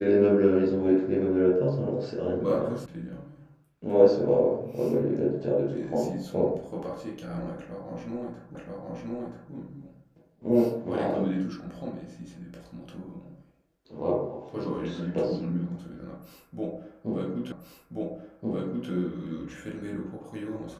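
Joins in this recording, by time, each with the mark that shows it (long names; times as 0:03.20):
0:02.86: cut off before it has died away
0:08.55: the same again, the last 0.98 s
0:17.52: the same again, the last 1.38 s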